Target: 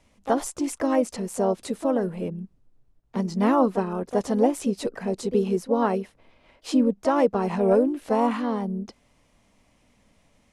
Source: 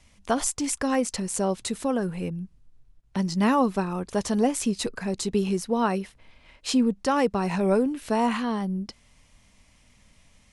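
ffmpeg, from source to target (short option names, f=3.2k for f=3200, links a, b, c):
-filter_complex "[0:a]equalizer=f=450:w=0.42:g=11.5,asplit=2[a][b];[b]asetrate=52444,aresample=44100,atempo=0.840896,volume=-9dB[c];[a][c]amix=inputs=2:normalize=0,volume=-8dB"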